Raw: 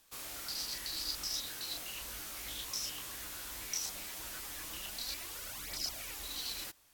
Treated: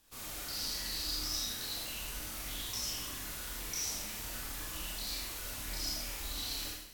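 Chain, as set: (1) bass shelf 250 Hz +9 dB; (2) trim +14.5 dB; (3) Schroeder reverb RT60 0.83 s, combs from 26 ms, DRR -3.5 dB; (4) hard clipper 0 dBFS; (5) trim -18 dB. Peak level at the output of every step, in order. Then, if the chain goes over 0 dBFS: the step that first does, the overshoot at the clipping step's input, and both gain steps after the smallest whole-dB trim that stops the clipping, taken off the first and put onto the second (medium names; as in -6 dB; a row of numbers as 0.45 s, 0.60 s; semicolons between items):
-22.0 dBFS, -7.5 dBFS, -6.0 dBFS, -6.0 dBFS, -24.0 dBFS; nothing clips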